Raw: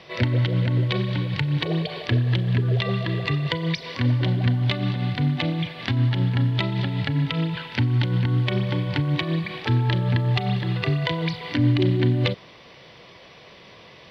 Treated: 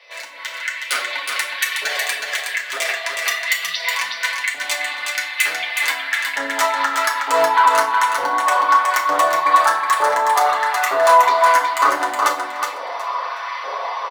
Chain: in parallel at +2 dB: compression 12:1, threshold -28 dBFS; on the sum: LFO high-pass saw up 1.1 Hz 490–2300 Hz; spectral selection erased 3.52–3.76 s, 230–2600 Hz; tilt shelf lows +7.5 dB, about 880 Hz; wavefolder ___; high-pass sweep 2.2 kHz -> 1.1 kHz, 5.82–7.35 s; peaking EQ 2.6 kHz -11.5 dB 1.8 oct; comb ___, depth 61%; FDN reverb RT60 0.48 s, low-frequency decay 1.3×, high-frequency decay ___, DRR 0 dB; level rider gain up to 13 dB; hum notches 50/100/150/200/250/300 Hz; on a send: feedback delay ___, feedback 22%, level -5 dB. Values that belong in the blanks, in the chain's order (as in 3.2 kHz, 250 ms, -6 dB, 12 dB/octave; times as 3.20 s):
-18.5 dBFS, 7.3 ms, 0.7×, 368 ms